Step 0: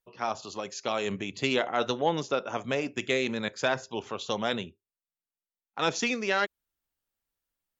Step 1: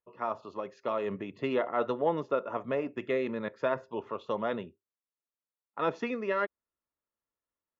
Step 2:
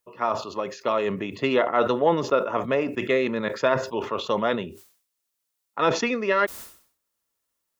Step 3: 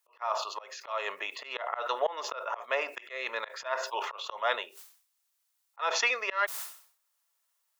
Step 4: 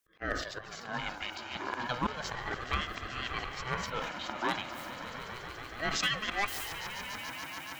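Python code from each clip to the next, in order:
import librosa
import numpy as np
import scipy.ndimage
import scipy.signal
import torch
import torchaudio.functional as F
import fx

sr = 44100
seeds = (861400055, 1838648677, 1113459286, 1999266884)

y1 = scipy.signal.sosfilt(scipy.signal.butter(2, 1200.0, 'lowpass', fs=sr, output='sos'), x)
y1 = fx.low_shelf(y1, sr, hz=410.0, db=-8.5)
y1 = fx.notch_comb(y1, sr, f0_hz=770.0)
y1 = F.gain(torch.from_numpy(y1), 3.5).numpy()
y2 = fx.high_shelf(y1, sr, hz=3000.0, db=10.5)
y2 = fx.sustainer(y2, sr, db_per_s=110.0)
y2 = F.gain(torch.from_numpy(y2), 7.0).numpy()
y3 = scipy.signal.sosfilt(scipy.signal.butter(4, 680.0, 'highpass', fs=sr, output='sos'), y2)
y3 = fx.auto_swell(y3, sr, attack_ms=255.0)
y3 = F.gain(torch.from_numpy(y3), 2.5).numpy()
y4 = np.minimum(y3, 2.0 * 10.0 ** (-19.5 / 20.0) - y3)
y4 = fx.echo_swell(y4, sr, ms=143, loudest=5, wet_db=-14)
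y4 = fx.ring_lfo(y4, sr, carrier_hz=480.0, swing_pct=35, hz=0.33)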